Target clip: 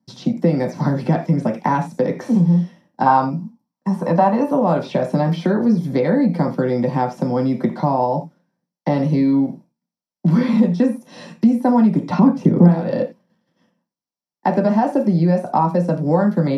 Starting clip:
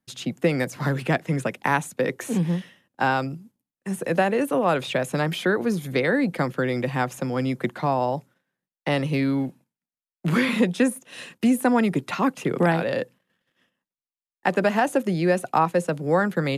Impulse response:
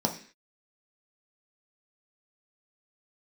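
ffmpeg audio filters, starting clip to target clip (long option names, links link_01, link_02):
-filter_complex "[0:a]asettb=1/sr,asplit=3[link_01][link_02][link_03];[link_01]atrim=end=12.104[link_04];[link_02]atrim=start=12.1:end=12.68,asetpts=PTS-STARTPTS,afade=type=in:duration=0.004:curve=qsin,afade=type=out:start_time=0.576:duration=0.004:curve=qsin,lowshelf=frequency=420:gain=11.5[link_05];[link_03]atrim=start=12.676[link_06];[link_04][link_05]acrossfade=duration=0.004:curve1=hsin:curve2=qsin[link_07];[link_07][link_06]acrossfade=duration=0.004:curve1=qsin:curve2=hsin[link_08];[1:a]atrim=start_sample=2205,atrim=end_sample=4410[link_09];[link_08][link_09]afir=irnorm=-1:irlink=0,acompressor=threshold=-12dB:ratio=2,asettb=1/sr,asplit=3[link_10][link_11][link_12];[link_10]atrim=end=3.064[link_13];[link_11]atrim=start=3.06:end=4.51,asetpts=PTS-STARTPTS,afade=type=in:duration=0.004:curve=qsin,afade=type=out:start_time=1.446:duration=0.004:curve=qsin,equalizer=frequency=400:width_type=o:width=0.67:gain=-5,equalizer=frequency=1000:width_type=o:width=0.67:gain=12,equalizer=frequency=10000:width_type=o:width=0.67:gain=-5[link_14];[link_12]atrim=start=4.506[link_15];[link_13][link_14]acrossfade=duration=0.004:curve1=hsin:curve2=qsin[link_16];[link_16][link_15]acrossfade=duration=0.004:curve1=qsin:curve2=hsin,acrossover=split=4600[link_17][link_18];[link_18]acompressor=threshold=-45dB:ratio=4:attack=1:release=60[link_19];[link_17][link_19]amix=inputs=2:normalize=0,volume=-4.5dB"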